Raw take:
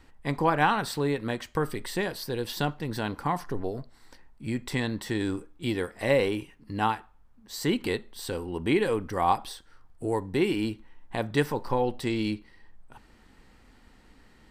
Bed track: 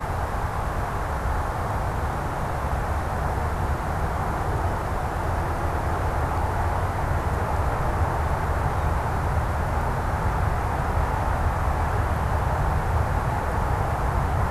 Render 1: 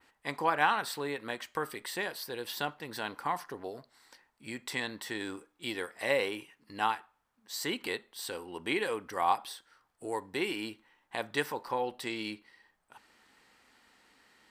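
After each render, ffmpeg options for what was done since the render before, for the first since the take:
-af "adynamicequalizer=threshold=0.00355:dfrequency=5800:dqfactor=0.73:tfrequency=5800:tqfactor=0.73:attack=5:release=100:ratio=0.375:range=2.5:mode=cutabove:tftype=bell,highpass=f=980:p=1"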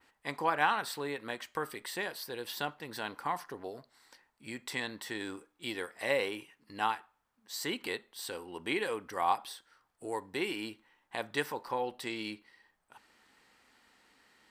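-af "volume=-1.5dB"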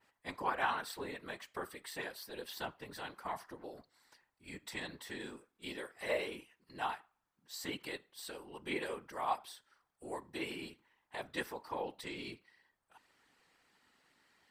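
-af "afftfilt=real='hypot(re,im)*cos(2*PI*random(0))':imag='hypot(re,im)*sin(2*PI*random(1))':win_size=512:overlap=0.75"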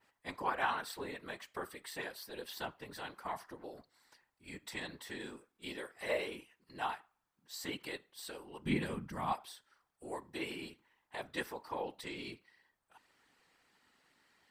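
-filter_complex "[0:a]asettb=1/sr,asplit=3[a][b][c];[a]atrim=end=8.654[d];[b]atrim=start=8.65:end=9.33,asetpts=PTS-STARTPTS,afade=t=in:d=0.004:c=qsin,afade=t=out:st=0.676:d=0.004:c=qsin,lowshelf=f=290:t=q:w=1.5:g=14[e];[c]atrim=start=9.326[f];[d][e]acrossfade=d=0.004:c1=hsin:c2=qsin[g];[g][f]acrossfade=d=0.004:c1=qsin:c2=hsin"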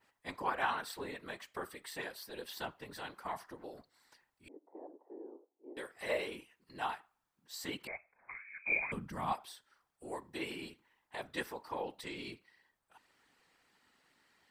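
-filter_complex "[0:a]asettb=1/sr,asplit=3[a][b][c];[a]atrim=end=4.484[d];[b]atrim=start=4.48:end=5.77,asetpts=PTS-STARTPTS,afade=t=in:d=0.004:c=qsin,afade=t=out:st=1.286:d=0.004:c=qsin,asuperpass=centerf=510:order=8:qfactor=0.91[e];[c]atrim=start=5.766[f];[d][e]acrossfade=d=0.004:c1=hsin:c2=qsin[g];[g][f]acrossfade=d=0.004:c1=qsin:c2=hsin,asettb=1/sr,asplit=3[h][i][j];[h]atrim=end=7.874[k];[i]atrim=start=7.87:end=8.92,asetpts=PTS-STARTPTS,afade=t=in:d=0.004:c=qsin,afade=t=out:st=1.046:d=0.004:c=qsin,lowpass=f=2.2k:t=q:w=0.5098,lowpass=f=2.2k:t=q:w=0.6013,lowpass=f=2.2k:t=q:w=0.9,lowpass=f=2.2k:t=q:w=2.563,afreqshift=-2600[l];[j]atrim=start=8.916[m];[k][l]acrossfade=d=0.004:c1=hsin:c2=qsin[n];[n][m]acrossfade=d=0.004:c1=qsin:c2=hsin"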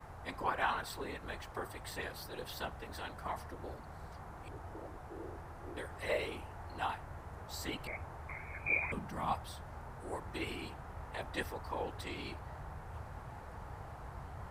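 -filter_complex "[1:a]volume=-23.5dB[a];[0:a][a]amix=inputs=2:normalize=0"

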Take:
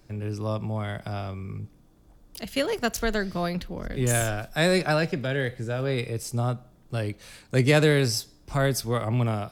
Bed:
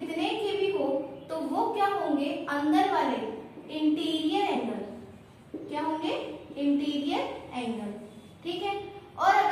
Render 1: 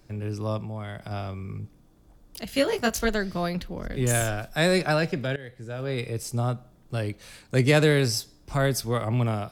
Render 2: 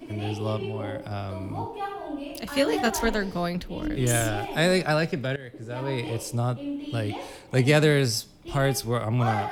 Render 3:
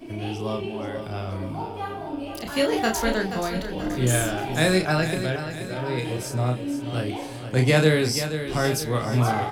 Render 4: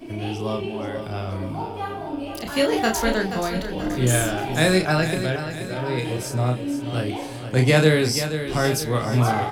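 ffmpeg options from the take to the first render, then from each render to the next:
-filter_complex "[0:a]asettb=1/sr,asplit=3[a][b][c];[a]atrim=end=0.614[d];[b]atrim=start=0.61:end=1.11,asetpts=PTS-STARTPTS,afade=t=in:d=0.004:c=qsin,afade=t=out:st=0.496:d=0.004:c=qsin,acompressor=threshold=-39dB:ratio=1.5:attack=3.2:release=140:knee=1:detection=peak[e];[c]atrim=start=1.106[f];[d][e]acrossfade=d=0.004:c1=hsin:c2=qsin[g];[g][f]acrossfade=d=0.004:c1=qsin:c2=hsin,asettb=1/sr,asplit=3[h][i][j];[h]atrim=end=2.474[k];[i]atrim=start=2.47:end=3.09,asetpts=PTS-STARTPTS,afade=t=in:d=0.004:c=qsin,afade=t=out:st=0.616:d=0.004:c=qsin,asplit=2[l][m];[m]adelay=18,volume=-3.5dB[n];[l][n]amix=inputs=2:normalize=0,atrim=end_sample=27342[o];[j]atrim=start=3.086[p];[k][o]acrossfade=d=0.004:c1=hsin:c2=qsin[q];[q][p]acrossfade=d=0.004:c1=qsin:c2=hsin,asplit=2[r][s];[r]atrim=end=5.36,asetpts=PTS-STARTPTS,afade=t=out:st=5.356:d=0.004:c=hsin:silence=0.125893[t];[s]atrim=start=5.36,asetpts=PTS-STARTPTS,afade=t=in:d=0.79:silence=0.125893[u];[t][u]concat=n=2:v=0:a=1"
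-filter_complex "[1:a]volume=-6.5dB[a];[0:a][a]amix=inputs=2:normalize=0"
-filter_complex "[0:a]asplit=2[a][b];[b]adelay=32,volume=-5dB[c];[a][c]amix=inputs=2:normalize=0,aecho=1:1:479|958|1437|1916|2395:0.316|0.158|0.0791|0.0395|0.0198"
-af "volume=2dB"

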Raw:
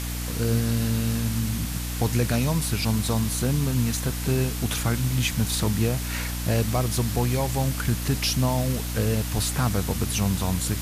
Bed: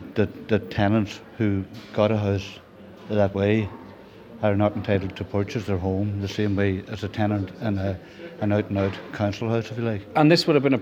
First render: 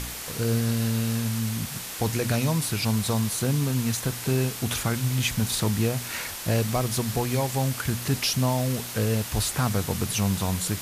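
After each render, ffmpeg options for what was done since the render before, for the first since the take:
-af "bandreject=f=60:t=h:w=4,bandreject=f=120:t=h:w=4,bandreject=f=180:t=h:w=4,bandreject=f=240:t=h:w=4,bandreject=f=300:t=h:w=4"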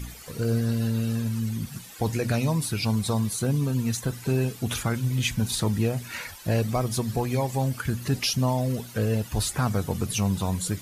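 -af "afftdn=nr=14:nf=-36"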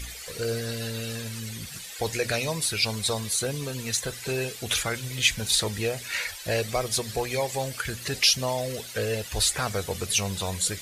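-af "equalizer=f=125:t=o:w=1:g=-8,equalizer=f=250:t=o:w=1:g=-10,equalizer=f=500:t=o:w=1:g=5,equalizer=f=1k:t=o:w=1:g=-4,equalizer=f=2k:t=o:w=1:g=6,equalizer=f=4k:t=o:w=1:g=6,equalizer=f=8k:t=o:w=1:g=5"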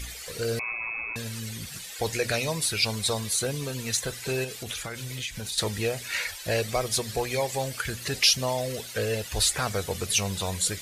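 -filter_complex "[0:a]asettb=1/sr,asplit=3[a][b][c];[a]atrim=end=0.594[d];[b]atrim=start=0.59:end=1.16,asetpts=PTS-STARTPTS,afade=t=in:d=0.004:c=qsin,afade=t=out:st=0.566:d=0.004:c=qsin,lowpass=f=2.3k:t=q:w=0.5098,lowpass=f=2.3k:t=q:w=0.6013,lowpass=f=2.3k:t=q:w=0.9,lowpass=f=2.3k:t=q:w=2.563,afreqshift=-2700[e];[c]atrim=start=1.156[f];[d][e]acrossfade=d=0.004:c1=hsin:c2=qsin[g];[g][f]acrossfade=d=0.004:c1=qsin:c2=hsin,asettb=1/sr,asplit=3[h][i][j];[h]atrim=end=4.444[k];[i]atrim=start=4.44:end=5.58,asetpts=PTS-STARTPTS,afade=t=in:d=0.004:c=qsin,afade=t=out:st=1.136:d=0.004:c=qsin,acompressor=threshold=-31dB:ratio=5:attack=3.2:release=140:knee=1:detection=peak[l];[j]atrim=start=5.576[m];[k][l]acrossfade=d=0.004:c1=hsin:c2=qsin[n];[n][m]acrossfade=d=0.004:c1=qsin:c2=hsin"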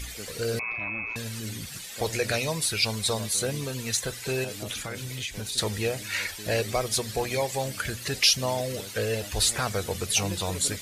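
-filter_complex "[1:a]volume=-21.5dB[a];[0:a][a]amix=inputs=2:normalize=0"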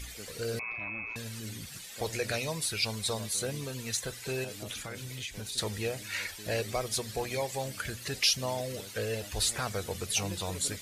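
-af "volume=-5.5dB"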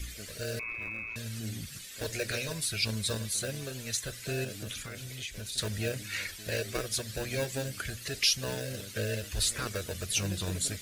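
-filter_complex "[0:a]acrossover=split=380|980[a][b][c];[a]aphaser=in_gain=1:out_gain=1:delay=2.7:decay=0.41:speed=0.67:type=triangular[d];[b]acrusher=samples=41:mix=1:aa=0.000001[e];[d][e][c]amix=inputs=3:normalize=0"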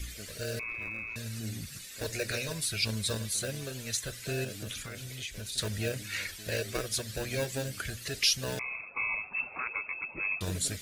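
-filter_complex "[0:a]asettb=1/sr,asplit=3[a][b][c];[a]atrim=end=0.824[d];[b]atrim=start=0.82:end=2.47,asetpts=PTS-STARTPTS,afade=t=in:d=0.004:c=qsin,afade=t=out:st=1.646:d=0.004:c=qsin,bandreject=f=3.2k:w=12[e];[c]atrim=start=2.466[f];[d][e]acrossfade=d=0.004:c1=hsin:c2=qsin[g];[g][f]acrossfade=d=0.004:c1=qsin:c2=hsin,asettb=1/sr,asplit=3[h][i][j];[h]atrim=end=8.594[k];[i]atrim=start=8.59:end=10.41,asetpts=PTS-STARTPTS,afade=t=in:d=0.004:c=qsin,afade=t=out:st=1.816:d=0.004:c=qsin,lowpass=f=2.3k:t=q:w=0.5098,lowpass=f=2.3k:t=q:w=0.6013,lowpass=f=2.3k:t=q:w=0.9,lowpass=f=2.3k:t=q:w=2.563,afreqshift=-2700[l];[j]atrim=start=10.406[m];[k][l]acrossfade=d=0.004:c1=hsin:c2=qsin[n];[n][m]acrossfade=d=0.004:c1=qsin:c2=hsin"

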